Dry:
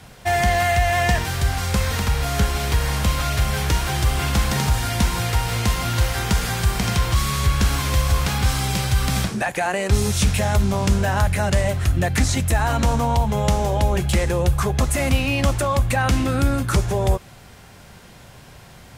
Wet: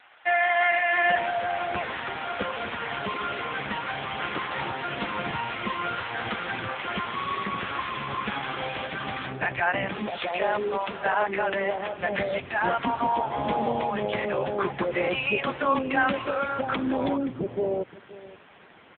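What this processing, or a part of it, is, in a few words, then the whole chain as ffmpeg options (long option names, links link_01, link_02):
satellite phone: -filter_complex "[0:a]asettb=1/sr,asplit=3[link_01][link_02][link_03];[link_01]atrim=end=9.634[link_04];[link_02]atrim=start=9.63:end=11.33,asetpts=PTS-STARTPTS,afade=type=in:duration=0.004:curve=qsin,afade=type=out:start_time=1.696:duration=0.004:curve=qsin,lowshelf=frequency=320:width_type=q:width=1.5:gain=-7.5[link_05];[link_03]atrim=start=11.326[link_06];[link_04][link_05]acrossfade=duration=0.004:curve1=hsin:curve2=qsin[link_07];[link_07][link_06]acrossfade=duration=0.004:curve1=qsin:curve2=hsin,highpass=300,lowpass=3400,acrossover=split=630[link_08][link_09];[link_08]adelay=660[link_10];[link_10][link_09]amix=inputs=2:normalize=0,aecho=1:1:524:0.126,volume=2dB" -ar 8000 -c:a libopencore_amrnb -b:a 5900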